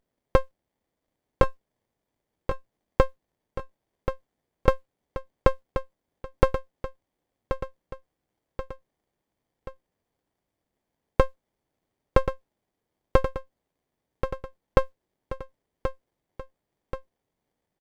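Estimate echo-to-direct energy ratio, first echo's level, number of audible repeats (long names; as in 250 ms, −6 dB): −7.5 dB, −9.0 dB, 3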